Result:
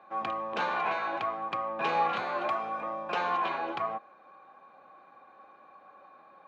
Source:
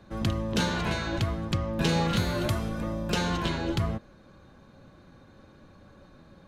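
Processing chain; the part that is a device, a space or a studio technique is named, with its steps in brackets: 2.21–2.63 s: high-pass 120 Hz; tin-can telephone (band-pass 590–2000 Hz; small resonant body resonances 780/1100/2400 Hz, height 13 dB, ringing for 35 ms)

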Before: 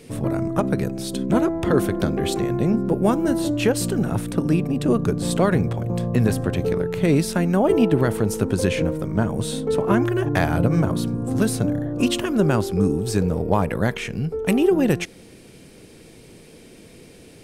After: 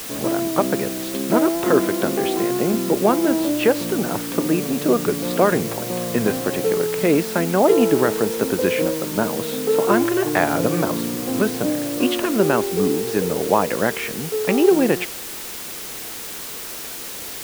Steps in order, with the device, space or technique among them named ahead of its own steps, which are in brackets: wax cylinder (band-pass 290–2700 Hz; wow and flutter; white noise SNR 12 dB); trim +4.5 dB

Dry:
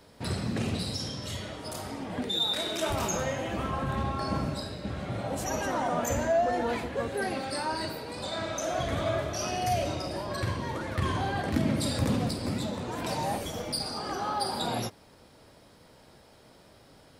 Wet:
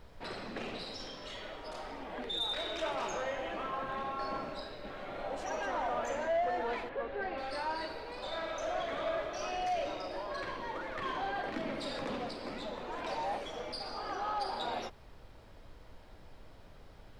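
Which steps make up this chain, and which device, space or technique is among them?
aircraft cabin announcement (band-pass 420–3500 Hz; saturation -23.5 dBFS, distortion -19 dB; brown noise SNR 14 dB); 6.89–7.38 s: distance through air 240 m; trim -2.5 dB

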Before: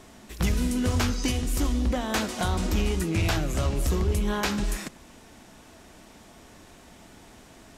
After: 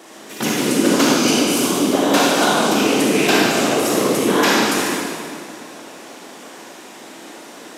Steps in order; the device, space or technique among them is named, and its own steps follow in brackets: 0.90–2.80 s: band-stop 1.9 kHz, Q 5.4; whispering ghost (whisper effect; high-pass 250 Hz 24 dB/octave; reverberation RT60 2.3 s, pre-delay 32 ms, DRR -4.5 dB); trim +8.5 dB

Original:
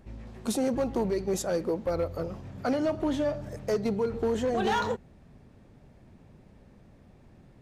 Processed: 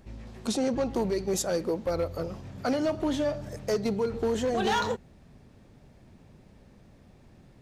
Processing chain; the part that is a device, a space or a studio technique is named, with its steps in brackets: presence and air boost (peaking EQ 4.9 kHz +4.5 dB 1.8 oct; treble shelf 10 kHz +4.5 dB); 0.47–0.90 s: low-pass 6.6 kHz 12 dB/octave

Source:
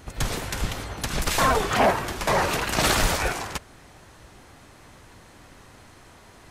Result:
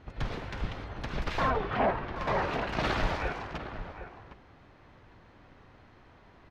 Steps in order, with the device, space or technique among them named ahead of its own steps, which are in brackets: shout across a valley (distance through air 260 m; echo from a far wall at 130 m, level -10 dB); 1.50–2.16 s: distance through air 150 m; trim -6 dB

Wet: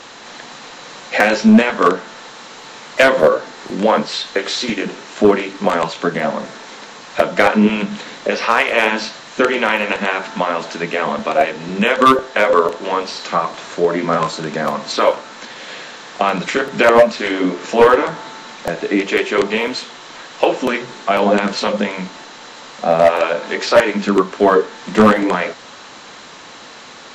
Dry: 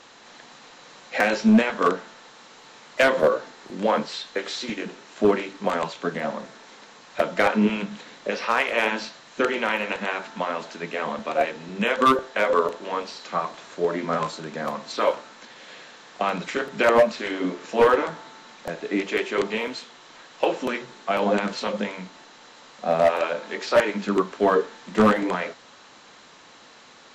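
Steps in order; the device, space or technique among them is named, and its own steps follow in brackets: parallel compression (in parallel at 0 dB: compression, threshold -31 dBFS, peak gain reduction 16.5 dB); on the sum: trim +6 dB

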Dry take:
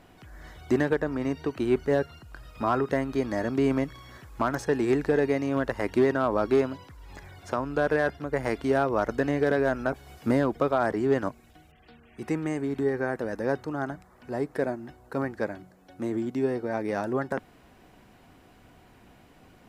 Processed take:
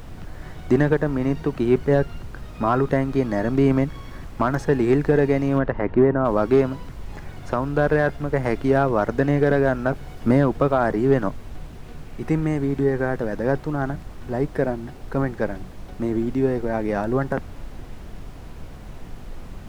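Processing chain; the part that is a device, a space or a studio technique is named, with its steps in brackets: car interior (peaking EQ 150 Hz +7 dB 0.7 oct; treble shelf 3.7 kHz -8 dB; brown noise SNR 12 dB); 5.58–6.24 s: low-pass 2.7 kHz -> 1.2 kHz 12 dB/octave; trim +5 dB

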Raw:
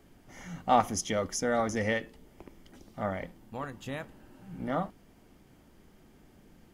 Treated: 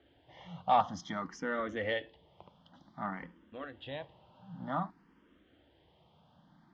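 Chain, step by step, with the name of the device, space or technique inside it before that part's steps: barber-pole phaser into a guitar amplifier (barber-pole phaser +0.54 Hz; saturation -18 dBFS, distortion -16 dB; cabinet simulation 91–3900 Hz, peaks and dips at 110 Hz -5 dB, 230 Hz -6 dB, 400 Hz -7 dB, 980 Hz +4 dB, 2.3 kHz -7 dB, 3.4 kHz +6 dB)

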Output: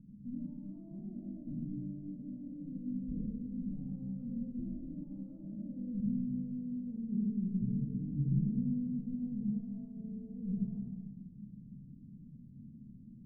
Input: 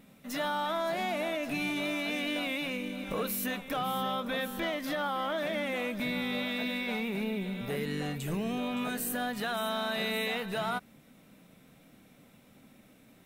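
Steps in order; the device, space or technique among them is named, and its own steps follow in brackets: club heard from the street (peak limiter -31 dBFS, peak gain reduction 7.5 dB; low-pass 200 Hz 24 dB/octave; reverberation RT60 1.3 s, pre-delay 61 ms, DRR -1 dB); trim +6.5 dB

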